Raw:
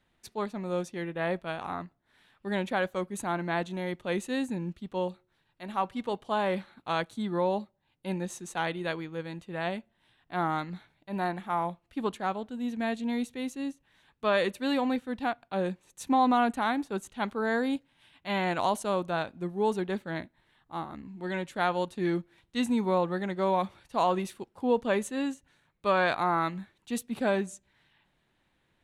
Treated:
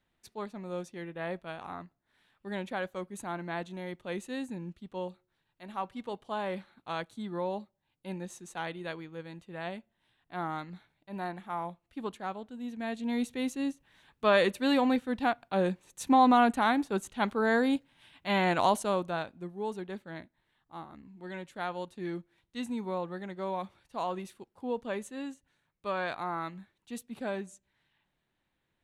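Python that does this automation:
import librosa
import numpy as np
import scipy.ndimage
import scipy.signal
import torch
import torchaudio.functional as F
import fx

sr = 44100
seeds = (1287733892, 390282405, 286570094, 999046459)

y = fx.gain(x, sr, db=fx.line((12.8, -6.0), (13.31, 2.0), (18.71, 2.0), (19.57, -8.0)))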